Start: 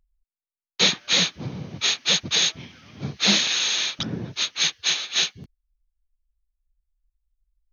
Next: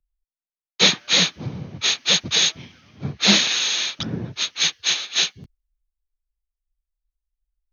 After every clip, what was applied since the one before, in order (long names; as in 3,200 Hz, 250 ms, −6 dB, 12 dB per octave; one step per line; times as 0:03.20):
multiband upward and downward expander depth 40%
level +2 dB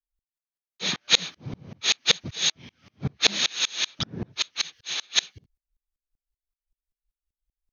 tremolo with a ramp in dB swelling 5.2 Hz, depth 32 dB
level +3 dB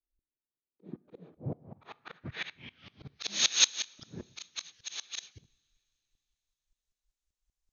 volume swells 394 ms
low-pass filter sweep 340 Hz → 6,800 Hz, 0:01.04–0:03.38
coupled-rooms reverb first 0.57 s, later 3.7 s, from −18 dB, DRR 20 dB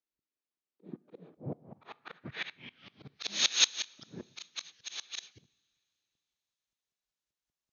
band-pass filter 150–6,300 Hz